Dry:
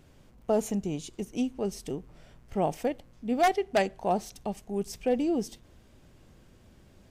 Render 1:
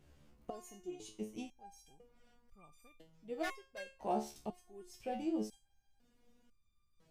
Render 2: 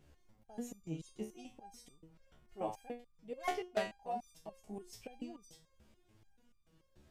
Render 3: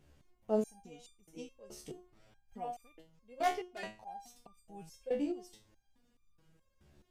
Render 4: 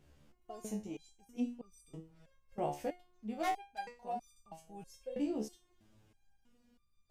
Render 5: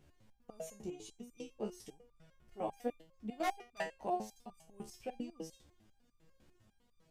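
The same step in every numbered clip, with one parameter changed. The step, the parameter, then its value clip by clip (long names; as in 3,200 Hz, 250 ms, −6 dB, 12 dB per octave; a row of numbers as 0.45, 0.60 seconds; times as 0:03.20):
step-sequenced resonator, speed: 2, 6.9, 4.7, 3.1, 10 Hertz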